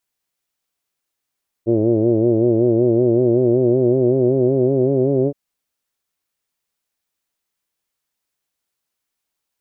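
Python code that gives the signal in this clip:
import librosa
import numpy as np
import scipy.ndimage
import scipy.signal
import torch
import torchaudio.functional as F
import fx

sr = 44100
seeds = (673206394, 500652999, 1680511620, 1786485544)

y = fx.formant_vowel(sr, seeds[0], length_s=3.67, hz=111.0, glide_st=3.5, vibrato_hz=5.3, vibrato_st=0.9, f1_hz=360.0, f2_hz=600.0, f3_hz=2300.0)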